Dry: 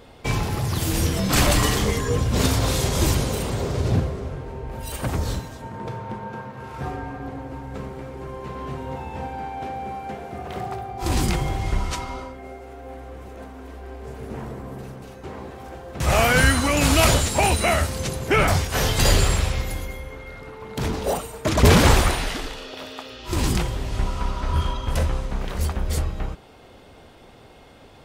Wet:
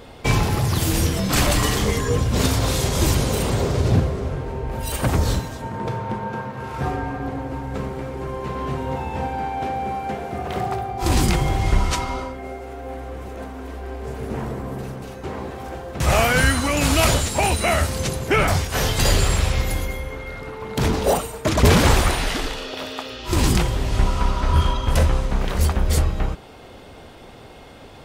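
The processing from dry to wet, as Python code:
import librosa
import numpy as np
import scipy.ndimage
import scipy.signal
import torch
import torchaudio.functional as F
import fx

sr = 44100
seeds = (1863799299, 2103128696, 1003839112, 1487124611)

y = fx.rider(x, sr, range_db=3, speed_s=0.5)
y = F.gain(torch.from_numpy(y), 2.5).numpy()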